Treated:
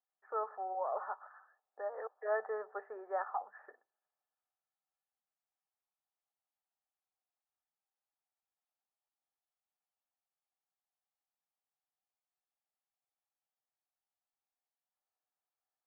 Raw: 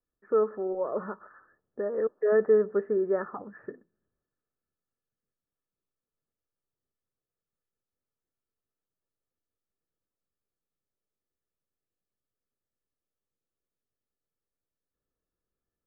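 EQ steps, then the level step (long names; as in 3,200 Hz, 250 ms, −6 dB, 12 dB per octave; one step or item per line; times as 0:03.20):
four-pole ladder high-pass 720 Hz, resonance 75%
high-frequency loss of the air 320 metres
spectral tilt +2 dB per octave
+6.5 dB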